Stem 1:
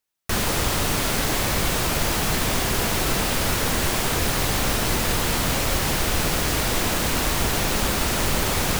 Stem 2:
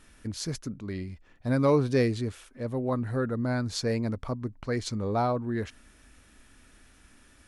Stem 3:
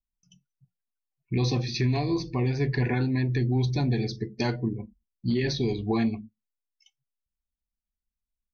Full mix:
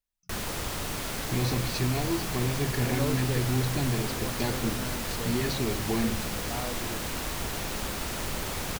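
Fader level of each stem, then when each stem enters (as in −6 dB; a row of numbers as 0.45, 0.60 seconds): −10.5, −10.5, −3.5 decibels; 0.00, 1.35, 0.00 seconds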